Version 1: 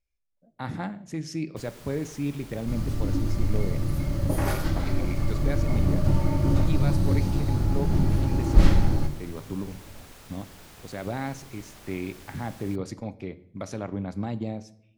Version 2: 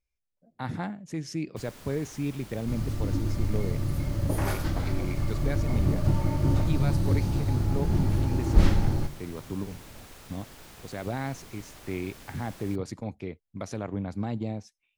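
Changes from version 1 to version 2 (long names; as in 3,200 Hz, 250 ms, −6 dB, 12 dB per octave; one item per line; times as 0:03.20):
speech: send off
second sound: send −9.5 dB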